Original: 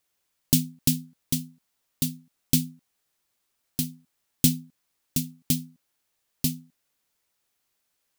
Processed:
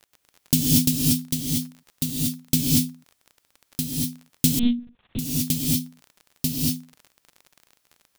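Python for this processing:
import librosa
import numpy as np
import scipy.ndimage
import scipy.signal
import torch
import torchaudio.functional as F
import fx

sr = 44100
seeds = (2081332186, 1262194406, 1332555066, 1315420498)

y = fx.rev_gated(x, sr, seeds[0], gate_ms=260, shape='rising', drr_db=-4.0)
y = fx.dmg_crackle(y, sr, seeds[1], per_s=34.0, level_db=-34.0)
y = fx.lpc_monotone(y, sr, seeds[2], pitch_hz=240.0, order=8, at=(4.59, 5.19))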